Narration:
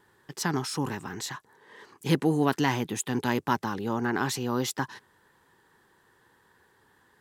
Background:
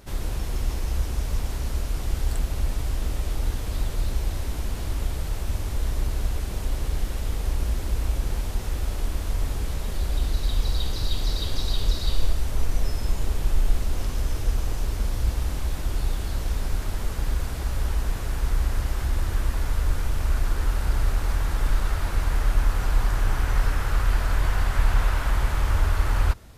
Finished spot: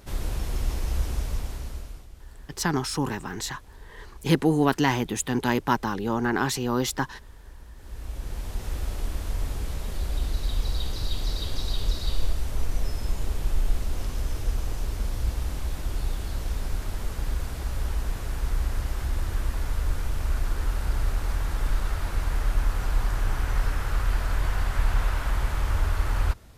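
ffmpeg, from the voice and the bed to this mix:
-filter_complex "[0:a]adelay=2200,volume=1.41[s0];[1:a]volume=6.68,afade=t=out:st=1.11:d=0.97:silence=0.105925,afade=t=in:st=7.75:d=0.98:silence=0.133352[s1];[s0][s1]amix=inputs=2:normalize=0"

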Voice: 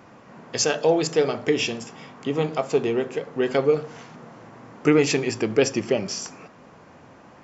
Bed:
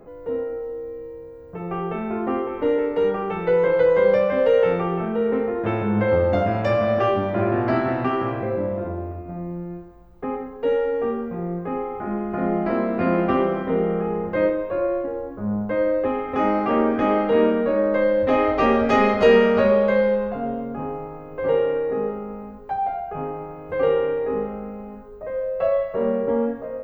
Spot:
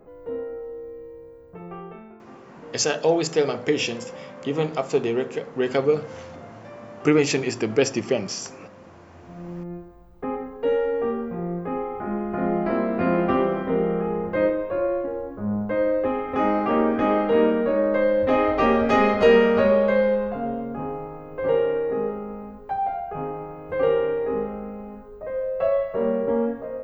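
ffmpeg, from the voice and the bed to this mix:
-filter_complex "[0:a]adelay=2200,volume=0.944[s0];[1:a]volume=7.08,afade=t=out:st=1.32:d=0.86:silence=0.125893,afade=t=in:st=9.12:d=0.61:silence=0.0841395[s1];[s0][s1]amix=inputs=2:normalize=0"

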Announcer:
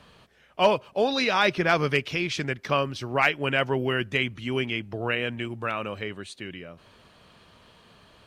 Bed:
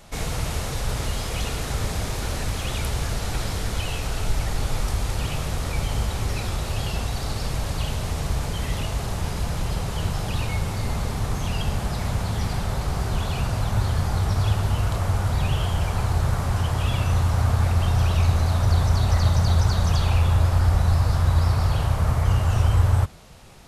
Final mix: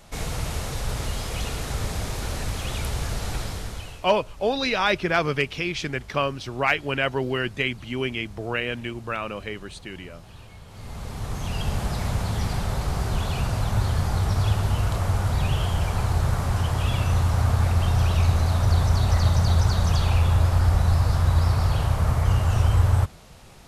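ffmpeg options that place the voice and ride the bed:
-filter_complex "[0:a]adelay=3450,volume=1[s0];[1:a]volume=7.5,afade=t=out:st=3.31:d=0.77:silence=0.125893,afade=t=in:st=10.67:d=1.13:silence=0.105925[s1];[s0][s1]amix=inputs=2:normalize=0"

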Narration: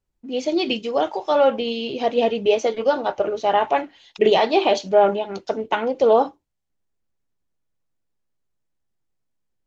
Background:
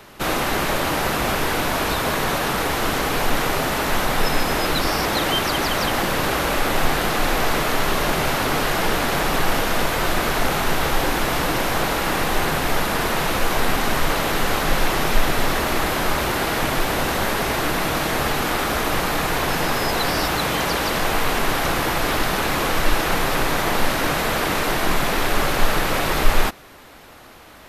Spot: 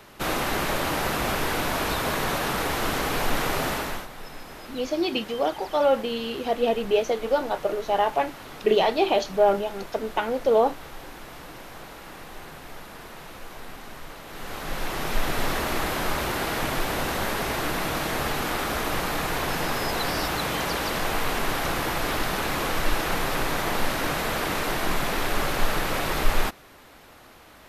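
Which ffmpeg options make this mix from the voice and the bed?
-filter_complex "[0:a]adelay=4450,volume=0.631[s0];[1:a]volume=3.35,afade=t=out:st=3.69:d=0.39:silence=0.158489,afade=t=in:st=14.26:d=1.19:silence=0.177828[s1];[s0][s1]amix=inputs=2:normalize=0"

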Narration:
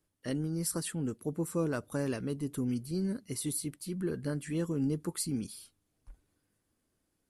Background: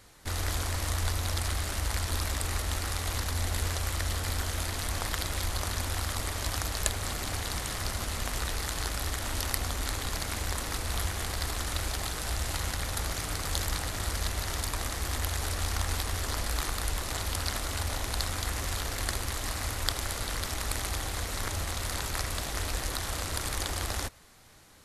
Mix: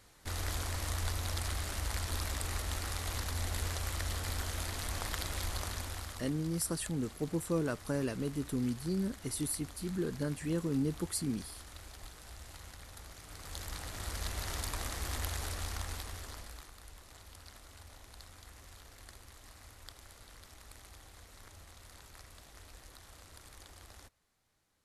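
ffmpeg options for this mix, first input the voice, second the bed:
-filter_complex "[0:a]adelay=5950,volume=0.891[s0];[1:a]volume=2.24,afade=t=out:st=5.55:d=0.82:silence=0.237137,afade=t=in:st=13.23:d=1.25:silence=0.237137,afade=t=out:st=15.25:d=1.43:silence=0.158489[s1];[s0][s1]amix=inputs=2:normalize=0"

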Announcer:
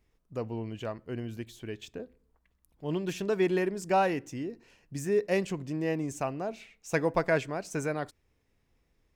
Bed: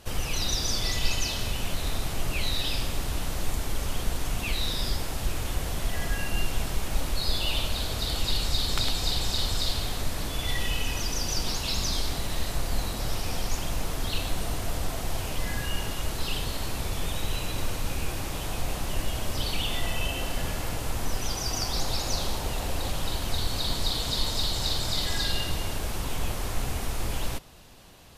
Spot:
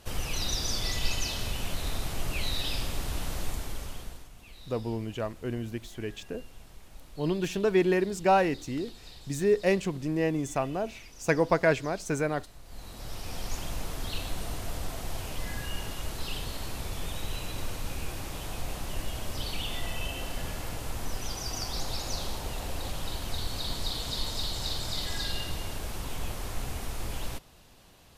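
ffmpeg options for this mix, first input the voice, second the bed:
-filter_complex "[0:a]adelay=4350,volume=1.41[s0];[1:a]volume=4.73,afade=t=out:st=3.35:d=0.94:silence=0.11885,afade=t=in:st=12.64:d=0.91:silence=0.149624[s1];[s0][s1]amix=inputs=2:normalize=0"

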